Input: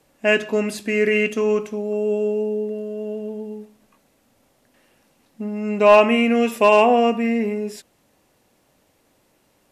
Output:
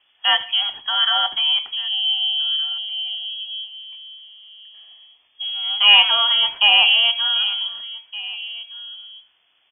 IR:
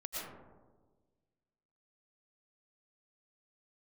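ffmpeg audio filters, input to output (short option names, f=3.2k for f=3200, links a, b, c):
-filter_complex "[0:a]asettb=1/sr,asplit=3[a][b][c];[a]atrim=end=3.284[d];[b]atrim=start=3.28:end=5.47,asetpts=PTS-STARTPTS,afade=t=in:d=0.004:c=qsin,afade=t=out:st=2.186:d=0.004:c=qsin,bandreject=f=2k:w=8.4[e];[c]atrim=start=5.466[f];[d][e]acrossfade=d=0.004:c1=hsin:c2=qsin[g];[g][f]acrossfade=d=0.004:c1=qsin:c2=hsin,asplit=2[h][i];[i]adelay=1516,volume=-15dB,highshelf=f=4k:g=-34.1[j];[h][j]amix=inputs=2:normalize=0,lowpass=f=3k:t=q:w=0.5098,lowpass=f=3k:t=q:w=0.6013,lowpass=f=3k:t=q:w=0.9,lowpass=f=3k:t=q:w=2.563,afreqshift=-3500"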